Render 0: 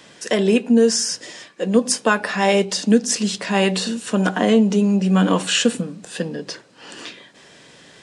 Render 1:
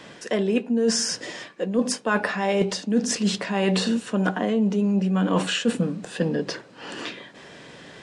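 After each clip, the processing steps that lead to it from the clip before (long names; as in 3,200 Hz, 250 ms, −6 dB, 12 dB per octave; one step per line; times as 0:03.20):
high-shelf EQ 4,200 Hz −11.5 dB
reversed playback
downward compressor 12 to 1, threshold −23 dBFS, peak gain reduction 14.5 dB
reversed playback
level +4.5 dB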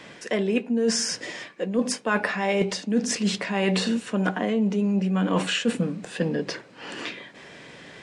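parametric band 2,200 Hz +5.5 dB 0.43 octaves
level −1.5 dB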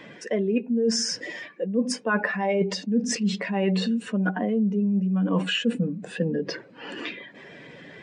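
expanding power law on the bin magnitudes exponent 1.6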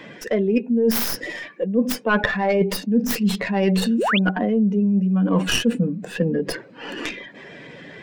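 stylus tracing distortion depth 0.22 ms
sound drawn into the spectrogram rise, 0:03.98–0:04.19, 280–3,800 Hz −25 dBFS
level +4.5 dB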